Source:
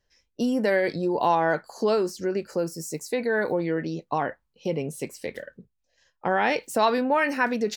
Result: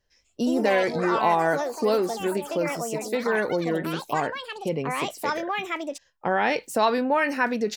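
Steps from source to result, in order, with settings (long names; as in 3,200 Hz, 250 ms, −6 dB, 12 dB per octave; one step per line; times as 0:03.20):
delay with pitch and tempo change per echo 169 ms, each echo +5 semitones, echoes 3, each echo −6 dB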